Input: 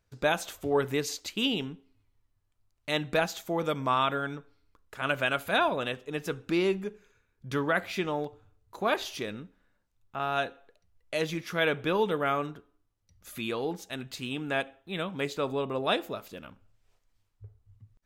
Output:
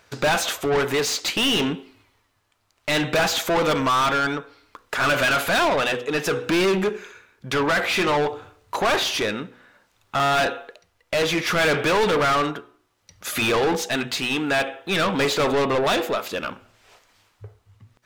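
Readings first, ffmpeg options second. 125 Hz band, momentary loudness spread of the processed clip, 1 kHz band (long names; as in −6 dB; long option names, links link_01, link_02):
+7.0 dB, 10 LU, +9.0 dB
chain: -filter_complex "[0:a]bandreject=frequency=122.1:width_type=h:width=4,bandreject=frequency=244.2:width_type=h:width=4,bandreject=frequency=366.3:width_type=h:width=4,bandreject=frequency=488.4:width_type=h:width=4,tremolo=f=0.59:d=0.5,asplit=2[link_01][link_02];[link_02]highpass=frequency=720:poles=1,volume=33dB,asoftclip=type=tanh:threshold=-12.5dB[link_03];[link_01][link_03]amix=inputs=2:normalize=0,lowpass=frequency=4200:poles=1,volume=-6dB"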